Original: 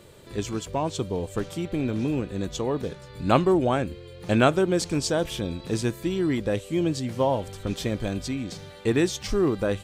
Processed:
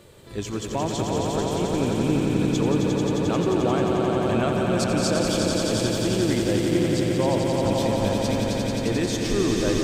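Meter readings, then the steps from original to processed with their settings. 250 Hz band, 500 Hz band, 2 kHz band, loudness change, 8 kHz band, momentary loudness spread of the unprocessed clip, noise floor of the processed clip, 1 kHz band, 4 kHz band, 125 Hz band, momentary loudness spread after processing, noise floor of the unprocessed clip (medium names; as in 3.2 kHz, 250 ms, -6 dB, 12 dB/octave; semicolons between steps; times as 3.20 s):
+3.5 dB, +2.5 dB, +1.5 dB, +3.0 dB, +5.5 dB, 10 LU, -32 dBFS, +1.5 dB, +5.0 dB, +4.0 dB, 3 LU, -45 dBFS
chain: peak limiter -16.5 dBFS, peak gain reduction 10.5 dB; on a send: echo with a slow build-up 88 ms, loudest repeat 5, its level -5 dB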